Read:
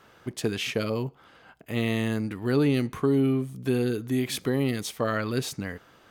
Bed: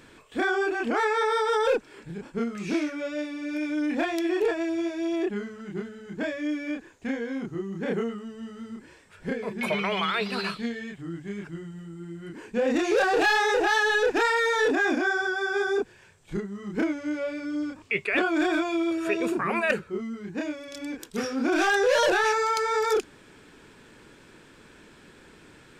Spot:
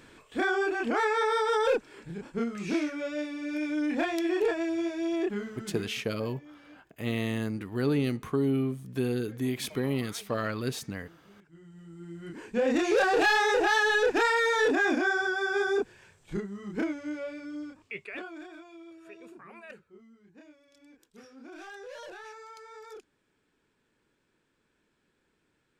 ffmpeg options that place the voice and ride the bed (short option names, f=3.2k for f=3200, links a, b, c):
-filter_complex "[0:a]adelay=5300,volume=-4dB[a];[1:a]volume=19dB,afade=t=out:st=5.68:d=0.4:silence=0.0944061,afade=t=in:st=11.47:d=0.87:silence=0.0891251,afade=t=out:st=16.11:d=2.37:silence=0.0891251[b];[a][b]amix=inputs=2:normalize=0"